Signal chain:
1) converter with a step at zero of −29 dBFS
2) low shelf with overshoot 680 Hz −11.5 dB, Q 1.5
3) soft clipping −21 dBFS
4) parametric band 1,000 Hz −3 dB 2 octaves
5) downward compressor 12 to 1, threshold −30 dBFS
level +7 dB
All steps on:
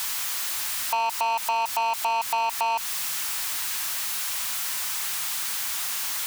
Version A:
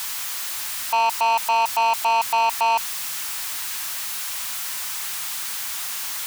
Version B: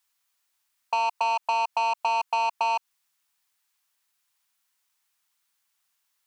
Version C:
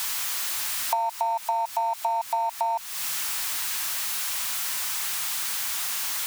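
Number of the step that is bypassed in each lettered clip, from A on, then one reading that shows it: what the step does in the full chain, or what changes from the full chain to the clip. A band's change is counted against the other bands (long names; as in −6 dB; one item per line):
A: 5, change in crest factor −1.5 dB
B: 1, distortion level −15 dB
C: 3, distortion level −8 dB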